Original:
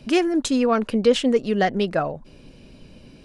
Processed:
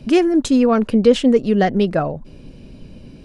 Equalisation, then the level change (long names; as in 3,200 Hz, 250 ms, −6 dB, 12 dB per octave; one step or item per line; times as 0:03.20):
low-shelf EQ 470 Hz +8.5 dB
0.0 dB